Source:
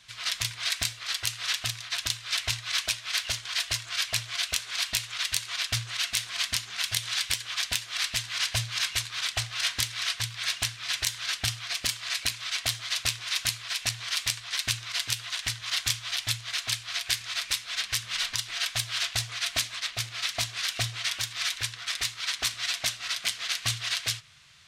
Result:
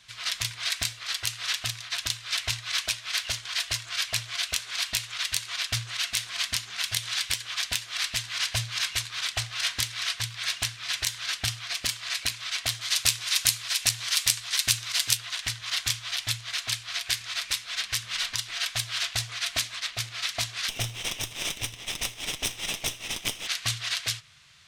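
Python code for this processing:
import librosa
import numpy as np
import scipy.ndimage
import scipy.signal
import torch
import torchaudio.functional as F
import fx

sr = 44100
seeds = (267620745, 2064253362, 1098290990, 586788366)

y = fx.high_shelf(x, sr, hz=5300.0, db=10.5, at=(12.81, 15.17))
y = fx.lower_of_two(y, sr, delay_ms=0.35, at=(20.68, 23.46), fade=0.02)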